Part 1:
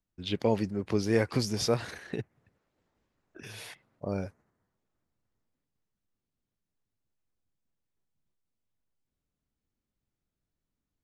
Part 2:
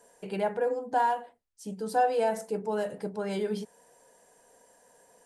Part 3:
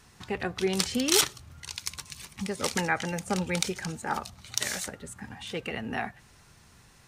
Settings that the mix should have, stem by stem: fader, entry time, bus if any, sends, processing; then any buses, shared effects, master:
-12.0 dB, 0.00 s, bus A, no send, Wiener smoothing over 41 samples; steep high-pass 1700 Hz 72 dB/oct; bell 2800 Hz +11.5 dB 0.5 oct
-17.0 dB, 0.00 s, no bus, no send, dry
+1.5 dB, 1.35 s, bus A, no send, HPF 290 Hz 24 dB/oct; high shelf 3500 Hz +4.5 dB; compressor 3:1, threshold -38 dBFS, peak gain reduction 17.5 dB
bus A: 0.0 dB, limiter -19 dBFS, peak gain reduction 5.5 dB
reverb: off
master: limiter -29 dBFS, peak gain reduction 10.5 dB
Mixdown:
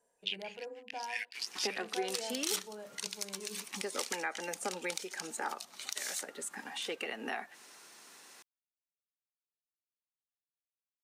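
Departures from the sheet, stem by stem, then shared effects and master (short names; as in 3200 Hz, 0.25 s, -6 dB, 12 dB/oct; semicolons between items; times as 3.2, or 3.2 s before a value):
stem 1 -12.0 dB -> -3.0 dB; master: missing limiter -29 dBFS, peak gain reduction 10.5 dB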